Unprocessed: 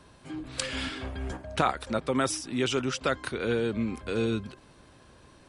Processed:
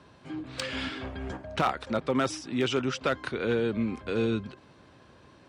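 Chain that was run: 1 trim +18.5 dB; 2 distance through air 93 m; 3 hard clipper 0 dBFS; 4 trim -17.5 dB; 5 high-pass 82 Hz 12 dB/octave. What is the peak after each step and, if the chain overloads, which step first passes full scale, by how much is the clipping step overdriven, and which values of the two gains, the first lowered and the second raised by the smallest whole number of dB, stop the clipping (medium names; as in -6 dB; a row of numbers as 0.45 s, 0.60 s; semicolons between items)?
+8.0 dBFS, +7.5 dBFS, 0.0 dBFS, -17.5 dBFS, -13.5 dBFS; step 1, 7.5 dB; step 1 +10.5 dB, step 4 -9.5 dB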